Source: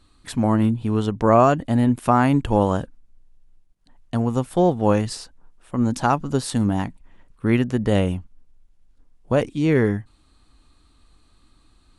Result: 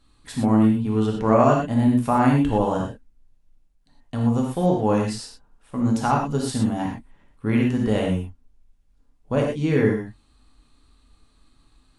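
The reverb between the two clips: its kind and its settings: gated-style reverb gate 140 ms flat, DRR -1.5 dB; trim -5.5 dB

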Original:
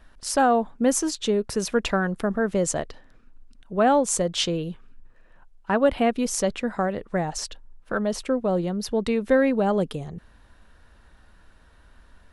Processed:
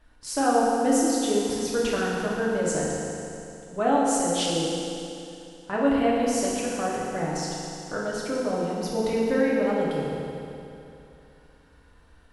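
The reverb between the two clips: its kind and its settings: FDN reverb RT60 2.8 s, high-frequency decay 0.95×, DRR -6 dB; trim -8 dB

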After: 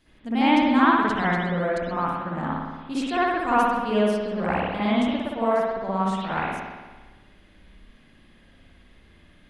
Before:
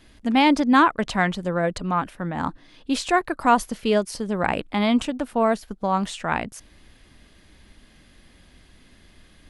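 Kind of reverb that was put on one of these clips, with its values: spring tank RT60 1.3 s, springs 57 ms, chirp 75 ms, DRR -9.5 dB; trim -11 dB

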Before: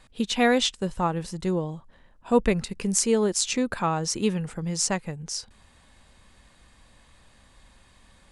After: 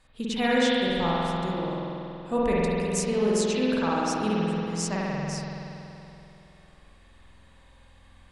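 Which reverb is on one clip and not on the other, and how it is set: spring tank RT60 3 s, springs 47 ms, chirp 25 ms, DRR -7 dB; trim -7.5 dB

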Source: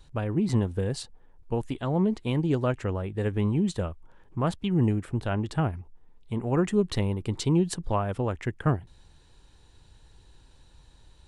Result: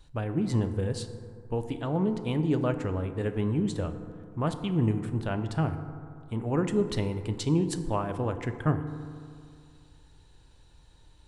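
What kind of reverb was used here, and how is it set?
FDN reverb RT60 2.3 s, low-frequency decay 1×, high-frequency decay 0.35×, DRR 8 dB; trim -2.5 dB

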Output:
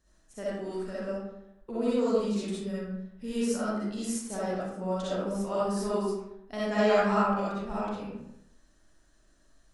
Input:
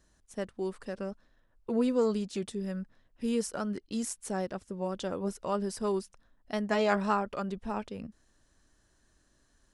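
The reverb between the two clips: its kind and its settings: algorithmic reverb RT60 0.81 s, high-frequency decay 0.65×, pre-delay 20 ms, DRR -9 dB; trim -6.5 dB

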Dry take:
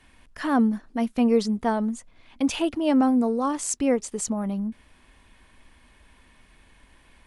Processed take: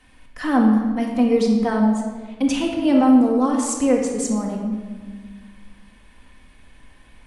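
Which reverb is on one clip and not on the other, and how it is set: simulated room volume 1500 m³, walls mixed, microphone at 2 m

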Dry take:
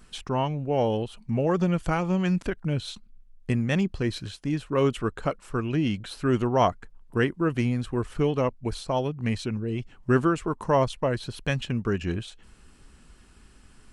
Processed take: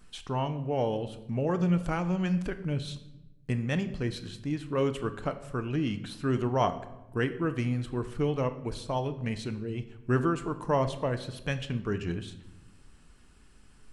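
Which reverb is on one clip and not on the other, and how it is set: simulated room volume 370 m³, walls mixed, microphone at 0.4 m; trim -5 dB

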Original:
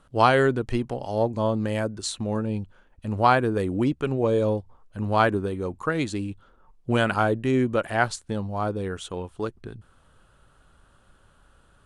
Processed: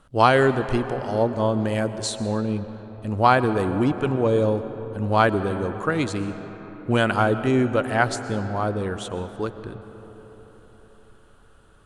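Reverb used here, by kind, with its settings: algorithmic reverb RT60 4.6 s, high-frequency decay 0.45×, pre-delay 80 ms, DRR 11 dB; trim +2 dB

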